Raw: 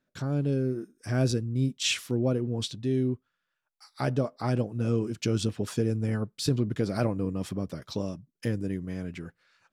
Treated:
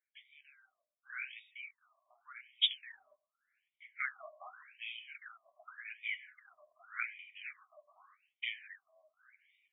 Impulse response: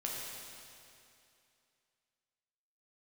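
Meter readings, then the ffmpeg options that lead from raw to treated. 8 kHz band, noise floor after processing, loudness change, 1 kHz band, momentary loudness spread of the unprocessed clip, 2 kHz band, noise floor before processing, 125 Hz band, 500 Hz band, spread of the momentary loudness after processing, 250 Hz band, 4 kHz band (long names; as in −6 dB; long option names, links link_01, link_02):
below −40 dB, below −85 dBFS, −10.5 dB, −12.5 dB, 8 LU, −1.0 dB, −82 dBFS, below −40 dB, −32.0 dB, 23 LU, below −40 dB, −2.5 dB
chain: -filter_complex "[0:a]asplit=3[link_01][link_02][link_03];[link_01]bandpass=frequency=270:width_type=q:width=8,volume=0dB[link_04];[link_02]bandpass=frequency=2290:width_type=q:width=8,volume=-6dB[link_05];[link_03]bandpass=frequency=3010:width_type=q:width=8,volume=-9dB[link_06];[link_04][link_05][link_06]amix=inputs=3:normalize=0,dynaudnorm=framelen=180:gausssize=13:maxgain=14dB,flanger=delay=5:depth=4.4:regen=-34:speed=1.8:shape=triangular,asplit=2[link_07][link_08];[1:a]atrim=start_sample=2205,atrim=end_sample=4410,asetrate=24255,aresample=44100[link_09];[link_08][link_09]afir=irnorm=-1:irlink=0,volume=-14.5dB[link_10];[link_07][link_10]amix=inputs=2:normalize=0,afftfilt=real='re*between(b*sr/1024,810*pow(2700/810,0.5+0.5*sin(2*PI*0.86*pts/sr))/1.41,810*pow(2700/810,0.5+0.5*sin(2*PI*0.86*pts/sr))*1.41)':imag='im*between(b*sr/1024,810*pow(2700/810,0.5+0.5*sin(2*PI*0.86*pts/sr))/1.41,810*pow(2700/810,0.5+0.5*sin(2*PI*0.86*pts/sr))*1.41)':win_size=1024:overlap=0.75,volume=9.5dB"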